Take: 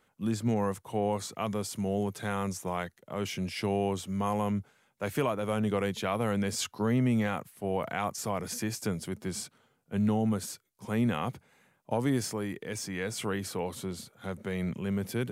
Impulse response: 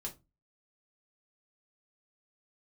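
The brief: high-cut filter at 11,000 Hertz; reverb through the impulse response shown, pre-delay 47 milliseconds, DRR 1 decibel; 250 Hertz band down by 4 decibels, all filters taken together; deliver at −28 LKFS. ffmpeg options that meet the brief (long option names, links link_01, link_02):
-filter_complex "[0:a]lowpass=11000,equalizer=frequency=250:width_type=o:gain=-5,asplit=2[link_01][link_02];[1:a]atrim=start_sample=2205,adelay=47[link_03];[link_02][link_03]afir=irnorm=-1:irlink=0,volume=1dB[link_04];[link_01][link_04]amix=inputs=2:normalize=0,volume=2.5dB"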